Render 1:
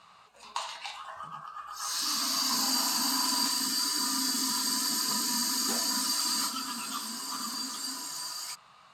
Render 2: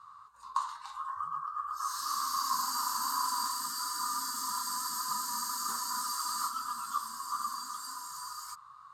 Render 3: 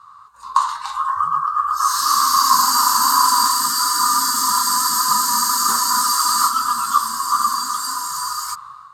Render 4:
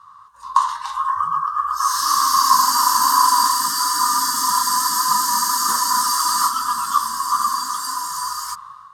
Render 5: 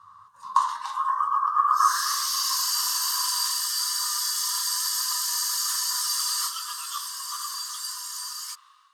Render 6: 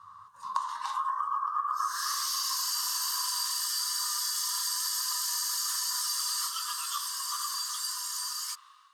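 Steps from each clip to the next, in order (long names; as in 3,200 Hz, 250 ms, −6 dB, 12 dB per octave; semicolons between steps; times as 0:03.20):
drawn EQ curve 100 Hz 0 dB, 270 Hz −20 dB, 400 Hz −17 dB, 680 Hz −23 dB, 1,100 Hz +9 dB, 2,500 Hz −22 dB, 3,700 Hz −12 dB, 11,000 Hz −4 dB
automatic gain control gain up to 9.5 dB; level +8 dB
EQ curve with evenly spaced ripples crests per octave 1.2, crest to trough 6 dB; level −1.5 dB
high-pass filter sweep 86 Hz → 2,600 Hz, 0:00.13–0:02.29; level −5.5 dB
downward compressor 6 to 1, threshold −28 dBFS, peak gain reduction 12.5 dB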